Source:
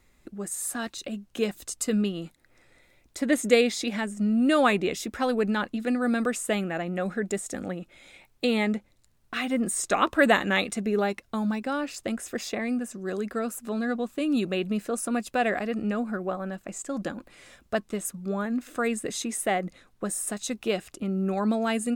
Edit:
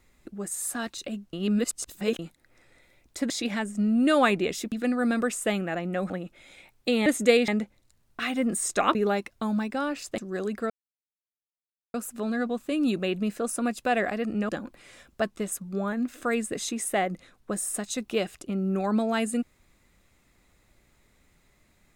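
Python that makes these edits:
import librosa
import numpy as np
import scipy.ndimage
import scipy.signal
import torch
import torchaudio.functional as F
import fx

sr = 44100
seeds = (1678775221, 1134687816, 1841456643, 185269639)

y = fx.edit(x, sr, fx.reverse_span(start_s=1.33, length_s=0.86),
    fx.move(start_s=3.3, length_s=0.42, to_s=8.62),
    fx.cut(start_s=5.14, length_s=0.61),
    fx.cut(start_s=7.13, length_s=0.53),
    fx.cut(start_s=10.09, length_s=0.78),
    fx.cut(start_s=12.1, length_s=0.81),
    fx.insert_silence(at_s=13.43, length_s=1.24),
    fx.cut(start_s=15.98, length_s=1.04), tone=tone)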